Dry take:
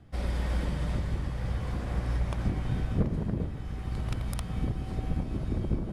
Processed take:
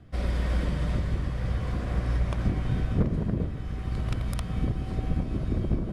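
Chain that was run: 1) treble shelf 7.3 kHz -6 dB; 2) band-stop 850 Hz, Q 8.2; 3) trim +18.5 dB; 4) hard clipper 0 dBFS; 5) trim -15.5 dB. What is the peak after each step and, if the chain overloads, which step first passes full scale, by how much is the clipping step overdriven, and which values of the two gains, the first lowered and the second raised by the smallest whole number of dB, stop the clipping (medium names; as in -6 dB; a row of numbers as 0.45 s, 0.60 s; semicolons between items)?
-14.5 dBFS, -14.5 dBFS, +4.0 dBFS, 0.0 dBFS, -15.5 dBFS; step 3, 4.0 dB; step 3 +14.5 dB, step 5 -11.5 dB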